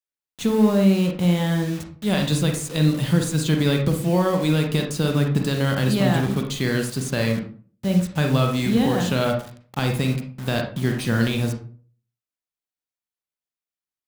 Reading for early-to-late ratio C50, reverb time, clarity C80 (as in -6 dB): 6.0 dB, 0.45 s, 11.5 dB